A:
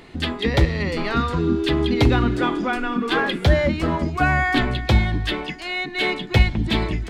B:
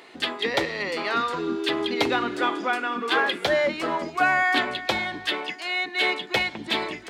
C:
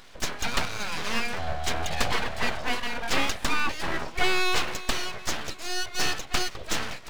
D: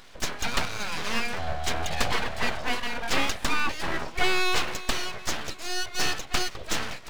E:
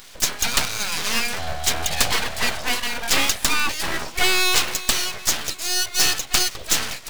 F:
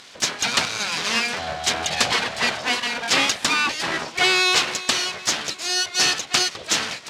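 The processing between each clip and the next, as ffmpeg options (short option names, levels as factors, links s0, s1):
-af "highpass=450"
-af "aeval=exprs='abs(val(0))':c=same"
-af anull
-af "crystalizer=i=3.5:c=0,volume=1.19"
-af "highpass=140,lowpass=6100,volume=1.26"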